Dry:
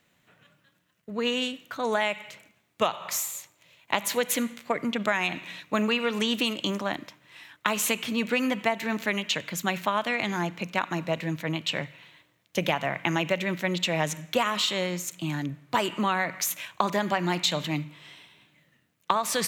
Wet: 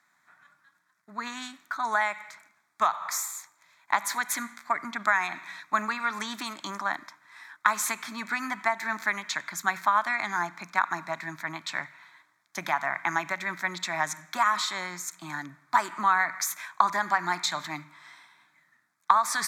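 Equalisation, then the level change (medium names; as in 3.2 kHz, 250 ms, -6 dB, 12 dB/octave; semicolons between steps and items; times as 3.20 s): band-pass filter 1.3 kHz, Q 0.53; tilt EQ +2 dB/octave; static phaser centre 1.2 kHz, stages 4; +5.5 dB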